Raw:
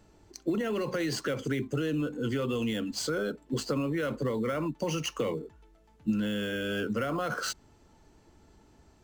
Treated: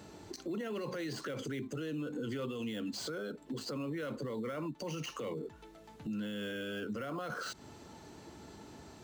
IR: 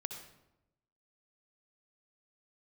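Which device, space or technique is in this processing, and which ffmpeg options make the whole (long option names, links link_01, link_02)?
broadcast voice chain: -af "highpass=110,deesser=0.9,acompressor=threshold=-43dB:ratio=5,equalizer=frequency=3900:width_type=o:width=0.29:gain=4,alimiter=level_in=17dB:limit=-24dB:level=0:latency=1:release=43,volume=-17dB,volume=9.5dB"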